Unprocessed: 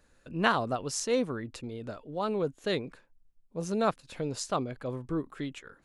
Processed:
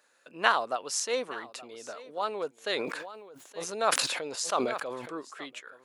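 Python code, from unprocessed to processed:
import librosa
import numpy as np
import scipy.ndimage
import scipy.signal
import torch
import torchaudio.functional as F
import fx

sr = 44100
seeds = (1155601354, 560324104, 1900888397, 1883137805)

y = scipy.signal.sosfilt(scipy.signal.butter(2, 620.0, 'highpass', fs=sr, output='sos'), x)
y = y + 10.0 ** (-18.5 / 20.0) * np.pad(y, (int(871 * sr / 1000.0), 0))[:len(y)]
y = fx.sustainer(y, sr, db_per_s=38.0, at=(2.67, 5.14))
y = F.gain(torch.from_numpy(y), 3.0).numpy()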